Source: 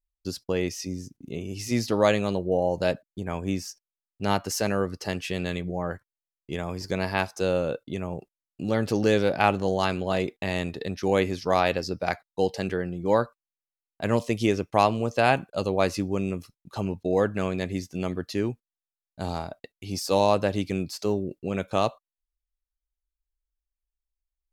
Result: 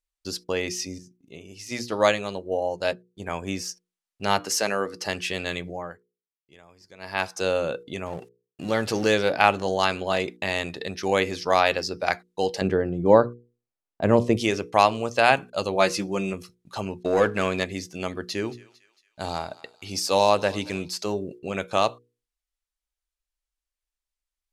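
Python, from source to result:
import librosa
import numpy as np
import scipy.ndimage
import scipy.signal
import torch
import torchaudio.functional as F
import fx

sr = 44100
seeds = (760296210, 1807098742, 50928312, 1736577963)

y = fx.upward_expand(x, sr, threshold_db=-43.0, expansion=1.5, at=(0.98, 3.2))
y = fx.highpass(y, sr, hz=190.0, slope=12, at=(4.43, 4.99))
y = fx.law_mismatch(y, sr, coded='mu', at=(8.06, 9.15))
y = fx.tilt_shelf(y, sr, db=10.0, hz=1100.0, at=(12.61, 14.37))
y = fx.comb(y, sr, ms=5.7, depth=0.65, at=(15.75, 16.33))
y = fx.leveller(y, sr, passes=1, at=(17.0, 17.64))
y = fx.echo_thinned(y, sr, ms=226, feedback_pct=52, hz=1100.0, wet_db=-18.5, at=(18.42, 20.87), fade=0.02)
y = fx.edit(y, sr, fx.fade_down_up(start_s=5.66, length_s=1.66, db=-21.0, fade_s=0.34), tone=tone)
y = scipy.signal.sosfilt(scipy.signal.butter(2, 11000.0, 'lowpass', fs=sr, output='sos'), y)
y = fx.low_shelf(y, sr, hz=450.0, db=-10.5)
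y = fx.hum_notches(y, sr, base_hz=60, count=8)
y = y * librosa.db_to_amplitude(5.5)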